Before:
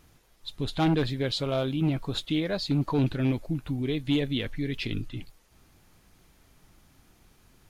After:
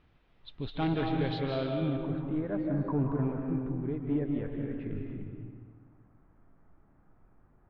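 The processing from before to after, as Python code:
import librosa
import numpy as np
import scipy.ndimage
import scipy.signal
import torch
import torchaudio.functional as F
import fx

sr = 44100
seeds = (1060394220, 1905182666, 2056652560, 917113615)

y = fx.lowpass(x, sr, hz=fx.steps((0.0, 3400.0), (1.74, 1500.0)), slope=24)
y = fx.rev_freeverb(y, sr, rt60_s=1.8, hf_ratio=0.65, predelay_ms=120, drr_db=1.0)
y = F.gain(torch.from_numpy(y), -6.0).numpy()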